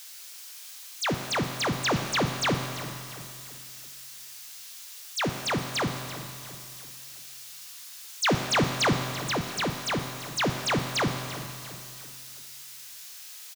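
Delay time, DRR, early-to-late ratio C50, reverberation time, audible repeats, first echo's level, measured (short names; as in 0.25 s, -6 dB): 0.337 s, 4.0 dB, 5.0 dB, 2.7 s, 3, -15.0 dB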